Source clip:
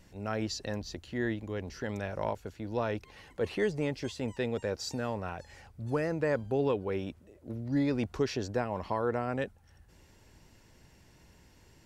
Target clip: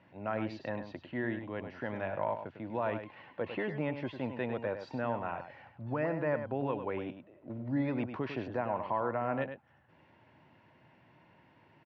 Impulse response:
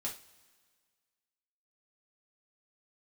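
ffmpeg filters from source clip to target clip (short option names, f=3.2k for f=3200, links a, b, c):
-filter_complex "[0:a]alimiter=limit=-22.5dB:level=0:latency=1:release=80,highpass=f=120:w=0.5412,highpass=f=120:w=1.3066,equalizer=f=190:t=q:w=4:g=-5,equalizer=f=430:t=q:w=4:g=-7,equalizer=f=630:t=q:w=4:g=4,equalizer=f=960:t=q:w=4:g=5,lowpass=f=2.8k:w=0.5412,lowpass=f=2.8k:w=1.3066,asplit=2[a][b];[b]aecho=0:1:101:0.355[c];[a][c]amix=inputs=2:normalize=0"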